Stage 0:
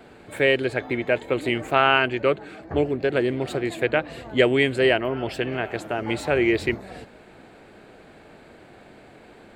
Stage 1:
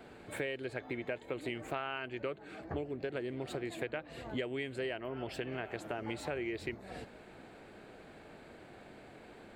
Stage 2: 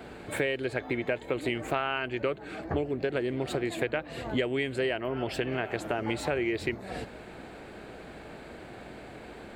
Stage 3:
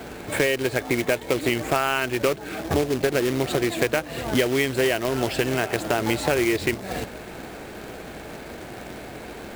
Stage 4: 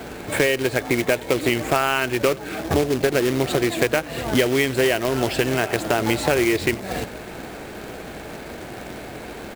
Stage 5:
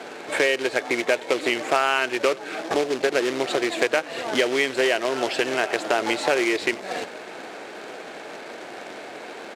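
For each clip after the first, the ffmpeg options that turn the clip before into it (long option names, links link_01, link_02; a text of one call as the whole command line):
ffmpeg -i in.wav -af "acompressor=threshold=-30dB:ratio=6,volume=-5.5dB" out.wav
ffmpeg -i in.wav -af "aeval=exprs='val(0)+0.000501*(sin(2*PI*60*n/s)+sin(2*PI*2*60*n/s)/2+sin(2*PI*3*60*n/s)/3+sin(2*PI*4*60*n/s)/4+sin(2*PI*5*60*n/s)/5)':channel_layout=same,volume=8.5dB" out.wav
ffmpeg -i in.wav -af "acrusher=bits=2:mode=log:mix=0:aa=0.000001,volume=7dB" out.wav
ffmpeg -i in.wav -af "aecho=1:1:90:0.0708,volume=2.5dB" out.wav
ffmpeg -i in.wav -af "highpass=390,lowpass=6900" out.wav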